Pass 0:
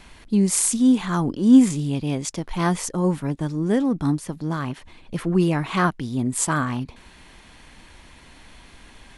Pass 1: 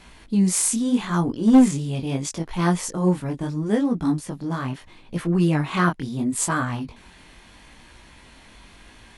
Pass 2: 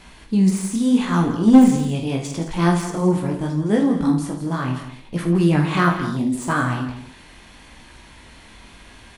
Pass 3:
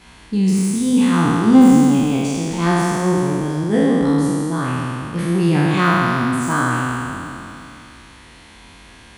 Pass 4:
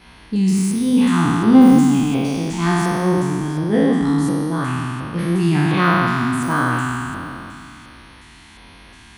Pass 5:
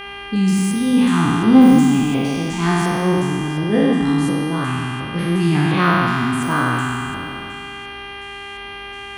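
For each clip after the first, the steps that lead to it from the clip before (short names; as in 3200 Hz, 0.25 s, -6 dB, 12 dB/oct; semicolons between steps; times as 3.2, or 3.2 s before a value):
chorus 0.76 Hz, delay 17 ms, depth 6.2 ms; one-sided clip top -14 dBFS; gain +2.5 dB
de-esser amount 65%; tapped delay 47/79/167/215/271 ms -8.5/-11.5/-12/-16.5/-18.5 dB; gain +2.5 dB
spectral trails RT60 2.92 s; HPF 45 Hz; notch 610 Hz, Q 12; gain -1.5 dB
LFO notch square 1.4 Hz 520–7400 Hz
buzz 400 Hz, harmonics 8, -33 dBFS 0 dB/oct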